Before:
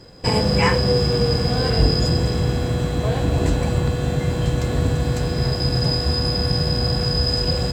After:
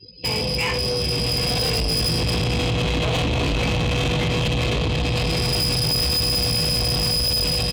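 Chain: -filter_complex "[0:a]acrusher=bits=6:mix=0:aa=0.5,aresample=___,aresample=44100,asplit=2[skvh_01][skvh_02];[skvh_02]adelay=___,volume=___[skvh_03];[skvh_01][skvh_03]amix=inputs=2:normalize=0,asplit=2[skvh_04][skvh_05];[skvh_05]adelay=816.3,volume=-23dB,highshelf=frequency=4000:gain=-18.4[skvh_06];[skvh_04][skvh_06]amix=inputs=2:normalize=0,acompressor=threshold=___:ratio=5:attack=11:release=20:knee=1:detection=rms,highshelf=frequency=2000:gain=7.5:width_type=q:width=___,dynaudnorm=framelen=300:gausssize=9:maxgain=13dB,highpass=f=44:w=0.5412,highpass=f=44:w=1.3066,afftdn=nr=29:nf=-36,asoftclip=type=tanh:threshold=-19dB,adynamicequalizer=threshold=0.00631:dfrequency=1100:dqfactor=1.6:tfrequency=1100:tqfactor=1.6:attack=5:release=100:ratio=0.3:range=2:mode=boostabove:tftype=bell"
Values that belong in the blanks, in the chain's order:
11025, 18, -4.5dB, -22dB, 3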